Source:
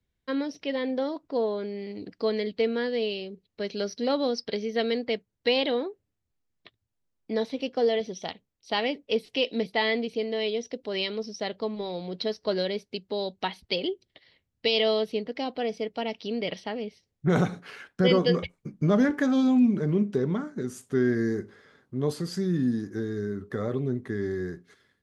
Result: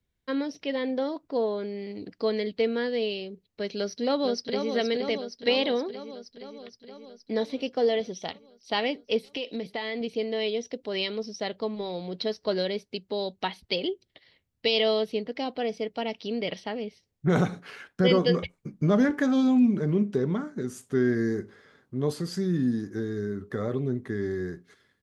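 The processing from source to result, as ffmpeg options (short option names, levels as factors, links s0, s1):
-filter_complex "[0:a]asplit=2[s0][s1];[s1]afade=t=in:st=3.77:d=0.01,afade=t=out:st=4.7:d=0.01,aecho=0:1:470|940|1410|1880|2350|2820|3290|3760|4230|4700|5170:0.473151|0.331206|0.231844|0.162291|0.113604|0.0795225|0.0556658|0.038966|0.0272762|0.0190934|0.0133654[s2];[s0][s2]amix=inputs=2:normalize=0,asettb=1/sr,asplit=3[s3][s4][s5];[s3]atrim=end=9.274[s6];[s4]atrim=start=9.27:end=10.01,asetpts=PTS-STARTPTS,afade=t=in:d=0.004:c=qsin,afade=t=out:st=0.736:d=0.004:c=qsin,acompressor=threshold=0.0398:ratio=6:attack=3.2:release=140:knee=1:detection=peak[s7];[s5]atrim=start=10.006[s8];[s6][s7]acrossfade=d=0.004:c1=hsin:c2=qsin[s9];[s9][s8]acrossfade=d=0.004:c1=qsin:c2=hsin"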